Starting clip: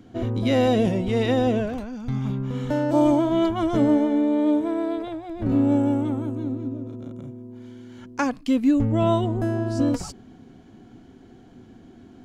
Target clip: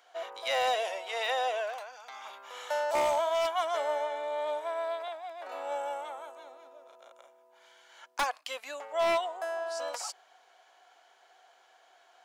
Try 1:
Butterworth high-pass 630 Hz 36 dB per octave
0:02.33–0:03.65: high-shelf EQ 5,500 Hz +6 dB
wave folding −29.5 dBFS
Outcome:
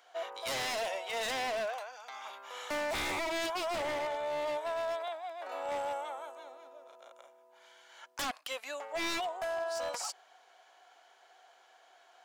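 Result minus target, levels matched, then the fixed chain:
wave folding: distortion +15 dB
Butterworth high-pass 630 Hz 36 dB per octave
0:02.33–0:03.65: high-shelf EQ 5,500 Hz +6 dB
wave folding −21.5 dBFS

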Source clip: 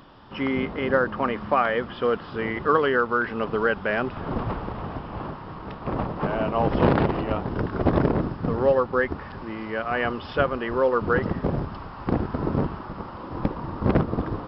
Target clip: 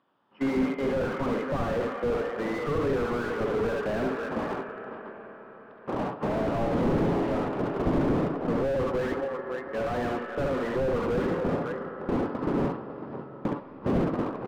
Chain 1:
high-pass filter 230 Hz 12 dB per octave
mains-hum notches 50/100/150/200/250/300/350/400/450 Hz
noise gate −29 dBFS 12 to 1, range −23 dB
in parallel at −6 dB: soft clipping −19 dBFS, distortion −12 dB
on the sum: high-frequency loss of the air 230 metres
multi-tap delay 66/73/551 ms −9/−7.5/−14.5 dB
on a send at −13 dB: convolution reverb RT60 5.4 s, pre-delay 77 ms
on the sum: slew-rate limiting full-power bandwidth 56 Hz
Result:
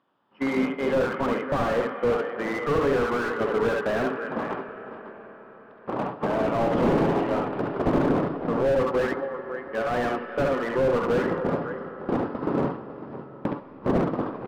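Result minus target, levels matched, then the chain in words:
slew-rate limiting: distortion −5 dB
high-pass filter 230 Hz 12 dB per octave
mains-hum notches 50/100/150/200/250/300/350/400/450 Hz
noise gate −29 dBFS 12 to 1, range −23 dB
in parallel at −6 dB: soft clipping −19 dBFS, distortion −12 dB
on the sum: high-frequency loss of the air 230 metres
multi-tap delay 66/73/551 ms −9/−7.5/−14.5 dB
on a send at −13 dB: convolution reverb RT60 5.4 s, pre-delay 77 ms
on the sum: slew-rate limiting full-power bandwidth 28 Hz

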